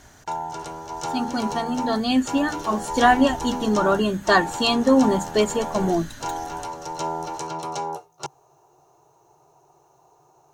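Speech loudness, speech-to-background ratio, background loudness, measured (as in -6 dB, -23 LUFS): -21.5 LUFS, 9.5 dB, -31.0 LUFS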